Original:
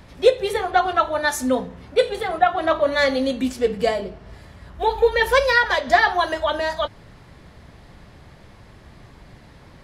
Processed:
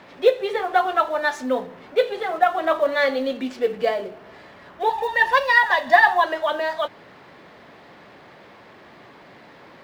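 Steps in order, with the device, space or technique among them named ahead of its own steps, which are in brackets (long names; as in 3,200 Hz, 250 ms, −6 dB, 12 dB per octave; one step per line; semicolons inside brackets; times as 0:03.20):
phone line with mismatched companding (band-pass filter 310–3,400 Hz; mu-law and A-law mismatch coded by mu)
0:04.89–0:06.24: comb filter 1.1 ms, depth 69%
level −1 dB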